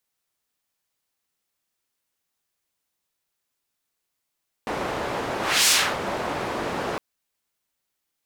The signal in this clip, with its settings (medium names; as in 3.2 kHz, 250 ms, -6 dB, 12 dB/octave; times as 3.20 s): whoosh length 2.31 s, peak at 1.01 s, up 0.31 s, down 0.31 s, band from 670 Hz, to 5.9 kHz, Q 0.75, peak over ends 11 dB